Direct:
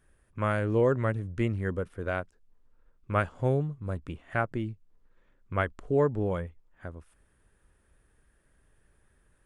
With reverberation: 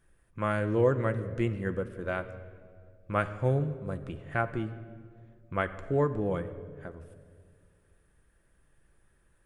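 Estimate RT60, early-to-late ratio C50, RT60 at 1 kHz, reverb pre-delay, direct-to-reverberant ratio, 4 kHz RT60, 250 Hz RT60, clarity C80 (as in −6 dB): 2.0 s, 13.0 dB, 1.6 s, 6 ms, 8.0 dB, 1.3 s, 2.4 s, 14.0 dB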